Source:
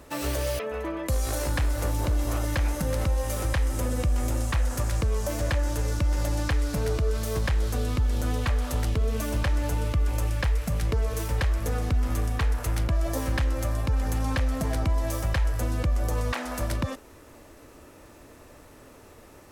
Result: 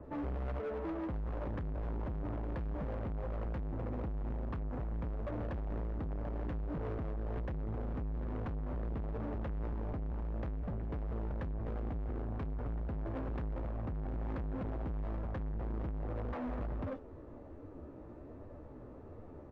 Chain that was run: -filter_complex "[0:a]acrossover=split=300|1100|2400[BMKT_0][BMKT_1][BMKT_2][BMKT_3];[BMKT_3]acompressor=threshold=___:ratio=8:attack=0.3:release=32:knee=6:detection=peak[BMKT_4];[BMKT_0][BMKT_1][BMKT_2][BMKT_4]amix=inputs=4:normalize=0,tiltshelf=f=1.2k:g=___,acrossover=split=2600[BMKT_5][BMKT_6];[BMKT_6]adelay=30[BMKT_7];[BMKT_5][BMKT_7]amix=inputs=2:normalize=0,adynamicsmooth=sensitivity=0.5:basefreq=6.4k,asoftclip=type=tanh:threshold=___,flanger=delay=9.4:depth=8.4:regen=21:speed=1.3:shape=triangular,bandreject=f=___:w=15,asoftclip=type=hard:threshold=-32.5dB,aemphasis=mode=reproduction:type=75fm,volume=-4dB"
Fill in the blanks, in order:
-49dB, 9, -23dB, 5.3k